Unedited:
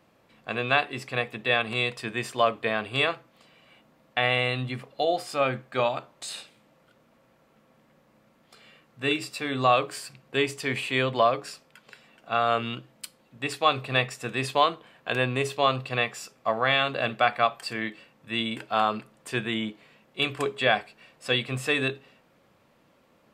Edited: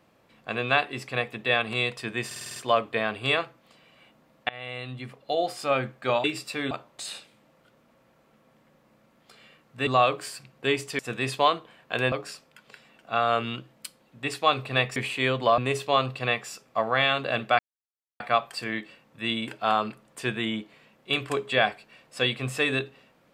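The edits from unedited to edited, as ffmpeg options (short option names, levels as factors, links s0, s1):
-filter_complex "[0:a]asplit=16[s0][s1][s2][s3][s4][s5][s6][s7][s8][s9][s10][s11][s12][s13][s14][s15];[s0]atrim=end=2.312[s16];[s1]atrim=start=2.258:end=2.312[s17];[s2]atrim=start=2.258:end=2.312[s18];[s3]atrim=start=2.258:end=2.312[s19];[s4]atrim=start=2.258:end=2.312[s20];[s5]atrim=start=2.258:end=2.312[s21];[s6]atrim=start=2.258:end=4.19,asetpts=PTS-STARTPTS,afade=t=out:st=1.928:d=0.004:c=hsin:silence=0.0707946[s22];[s7]atrim=start=4.19:end=5.942,asetpts=PTS-STARTPTS,afade=t=in:d=1.03:silence=0.0707946[s23];[s8]atrim=start=9.098:end=9.572[s24];[s9]atrim=start=5.938:end=9.102[s25];[s10]atrim=start=9.568:end=10.692[s26];[s11]atrim=start=14.148:end=15.282[s27];[s12]atrim=start=11.308:end=14.152[s28];[s13]atrim=start=10.688:end=11.312[s29];[s14]atrim=start=15.278:end=17.29,asetpts=PTS-STARTPTS,afade=t=out:st=2.008:d=0.004:c=hsin,apad=pad_dur=0.61[s30];[s15]atrim=start=17.29,asetpts=PTS-STARTPTS,afade=t=in:d=0.004:c=hsin[s31];[s16][s17]acrossfade=d=0.004:c1=hsin:c2=hsin[s32];[s32][s18]acrossfade=d=0.004:c1=hsin:c2=hsin[s33];[s33][s19]acrossfade=d=0.004:c1=hsin:c2=hsin[s34];[s34][s20]acrossfade=d=0.004:c1=hsin:c2=hsin[s35];[s35][s21]acrossfade=d=0.004:c1=hsin:c2=hsin[s36];[s22][s23]concat=n=2:v=0:a=1[s37];[s36][s37]acrossfade=d=0.004:c1=hsin:c2=hsin[s38];[s38][s24]acrossfade=d=0.004:c1=hsin:c2=hsin[s39];[s39][s25]acrossfade=d=0.004:c1=hsin:c2=hsin[s40];[s40][s26]acrossfade=d=0.004:c1=hsin:c2=hsin[s41];[s41][s27]acrossfade=d=0.004:c1=hsin:c2=hsin[s42];[s42][s28]acrossfade=d=0.004:c1=hsin:c2=hsin[s43];[s43][s29]acrossfade=d=0.004:c1=hsin:c2=hsin[s44];[s30][s31]concat=n=2:v=0:a=1[s45];[s44][s45]acrossfade=d=0.004:c1=hsin:c2=hsin"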